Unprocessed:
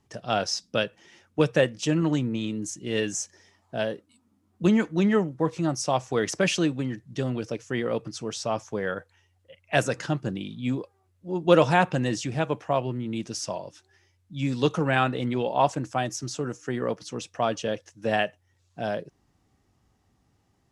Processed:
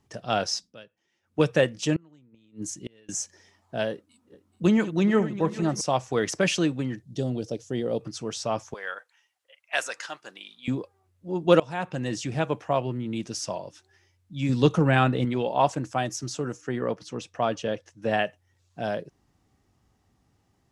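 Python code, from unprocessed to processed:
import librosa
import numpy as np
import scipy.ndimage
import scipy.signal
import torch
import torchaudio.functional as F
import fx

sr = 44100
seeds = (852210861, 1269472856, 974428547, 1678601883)

y = fx.gate_flip(x, sr, shuts_db=-21.0, range_db=-31, at=(1.96, 3.09))
y = fx.reverse_delay_fb(y, sr, ms=214, feedback_pct=67, wet_db=-13.5, at=(3.92, 5.81))
y = fx.band_shelf(y, sr, hz=1600.0, db=-11.5, octaves=1.7, at=(7.02, 8.01))
y = fx.highpass(y, sr, hz=970.0, slope=12, at=(8.74, 10.68))
y = fx.low_shelf(y, sr, hz=290.0, db=7.5, at=(14.49, 15.25))
y = fx.high_shelf(y, sr, hz=4900.0, db=-7.0, at=(16.61, 18.25))
y = fx.edit(y, sr, fx.fade_down_up(start_s=0.57, length_s=0.83, db=-21.0, fade_s=0.18),
    fx.fade_in_from(start_s=11.6, length_s=0.72, floor_db=-23.5), tone=tone)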